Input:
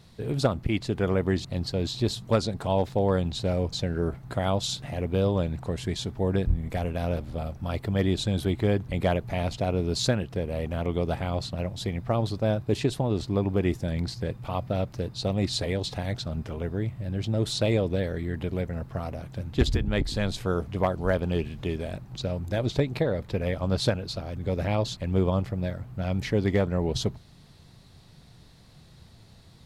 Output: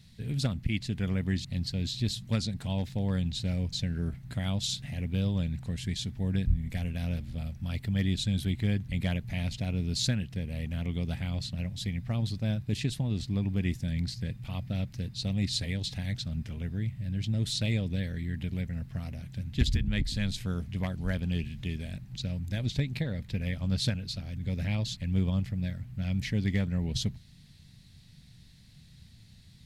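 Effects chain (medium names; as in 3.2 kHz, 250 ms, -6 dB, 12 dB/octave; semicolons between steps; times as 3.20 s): high-order bell 660 Hz -14 dB 2.4 oct; trim -1.5 dB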